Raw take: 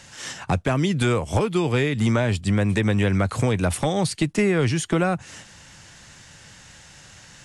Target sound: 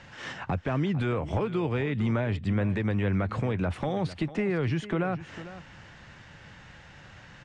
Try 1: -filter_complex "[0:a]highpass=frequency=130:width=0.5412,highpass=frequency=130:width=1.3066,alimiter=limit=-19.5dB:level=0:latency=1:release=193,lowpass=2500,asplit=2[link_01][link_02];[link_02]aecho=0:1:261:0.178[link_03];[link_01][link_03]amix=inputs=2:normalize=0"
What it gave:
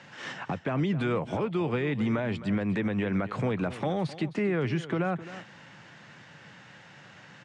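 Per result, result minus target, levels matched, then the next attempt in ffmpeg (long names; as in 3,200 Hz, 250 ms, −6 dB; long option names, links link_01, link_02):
echo 189 ms early; 125 Hz band −3.0 dB
-filter_complex "[0:a]highpass=frequency=130:width=0.5412,highpass=frequency=130:width=1.3066,alimiter=limit=-19.5dB:level=0:latency=1:release=193,lowpass=2500,asplit=2[link_01][link_02];[link_02]aecho=0:1:450:0.178[link_03];[link_01][link_03]amix=inputs=2:normalize=0"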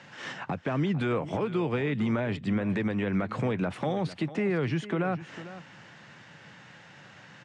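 125 Hz band −3.0 dB
-filter_complex "[0:a]alimiter=limit=-19.5dB:level=0:latency=1:release=193,lowpass=2500,asplit=2[link_01][link_02];[link_02]aecho=0:1:450:0.178[link_03];[link_01][link_03]amix=inputs=2:normalize=0"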